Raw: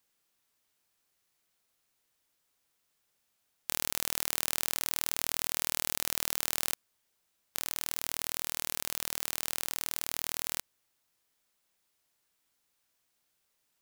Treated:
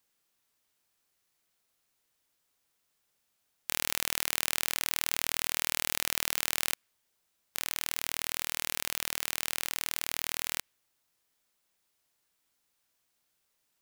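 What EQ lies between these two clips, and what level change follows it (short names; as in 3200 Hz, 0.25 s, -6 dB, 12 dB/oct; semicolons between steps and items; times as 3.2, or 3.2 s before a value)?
dynamic EQ 2300 Hz, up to +6 dB, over -56 dBFS, Q 0.9; 0.0 dB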